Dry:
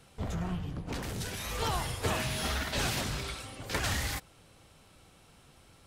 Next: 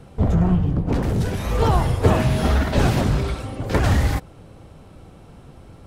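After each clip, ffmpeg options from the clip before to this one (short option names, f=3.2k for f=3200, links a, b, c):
-af "tiltshelf=f=1.3k:g=9,volume=8.5dB"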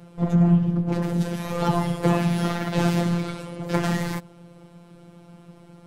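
-af "afftfilt=real='hypot(re,im)*cos(PI*b)':imag='0':win_size=1024:overlap=0.75,lowshelf=f=110:t=q:w=1.5:g=-10"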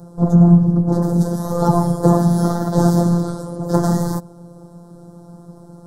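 -af "asuperstop=centerf=2500:order=4:qfactor=0.58,volume=7.5dB"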